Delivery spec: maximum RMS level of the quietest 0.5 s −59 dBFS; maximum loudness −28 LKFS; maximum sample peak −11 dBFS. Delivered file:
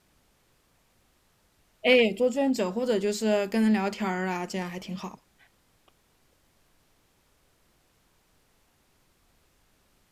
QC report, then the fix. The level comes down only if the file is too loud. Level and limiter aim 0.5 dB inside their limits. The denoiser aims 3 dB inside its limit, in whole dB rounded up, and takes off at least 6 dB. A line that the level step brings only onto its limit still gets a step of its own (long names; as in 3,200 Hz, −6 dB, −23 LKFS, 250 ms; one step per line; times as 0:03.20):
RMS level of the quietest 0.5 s −67 dBFS: in spec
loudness −26.0 LKFS: out of spec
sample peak −6.5 dBFS: out of spec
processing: level −2.5 dB
brickwall limiter −11.5 dBFS